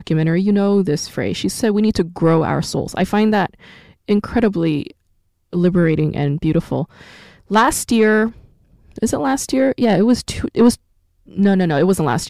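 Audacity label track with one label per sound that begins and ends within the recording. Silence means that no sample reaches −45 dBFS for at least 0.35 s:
5.530000	10.760000	sound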